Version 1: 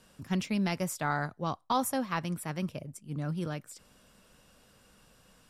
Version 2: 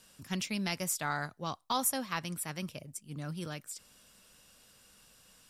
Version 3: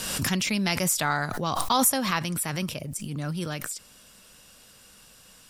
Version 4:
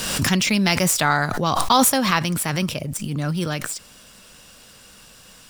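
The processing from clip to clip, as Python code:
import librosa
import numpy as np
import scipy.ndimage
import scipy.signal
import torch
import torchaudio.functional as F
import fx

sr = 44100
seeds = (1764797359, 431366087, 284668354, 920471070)

y1 = fx.high_shelf(x, sr, hz=2100.0, db=12.0)
y1 = y1 * 10.0 ** (-6.0 / 20.0)
y2 = fx.pre_swell(y1, sr, db_per_s=32.0)
y2 = y2 * 10.0 ** (8.0 / 20.0)
y3 = scipy.signal.medfilt(y2, 3)
y3 = y3 * 10.0 ** (7.0 / 20.0)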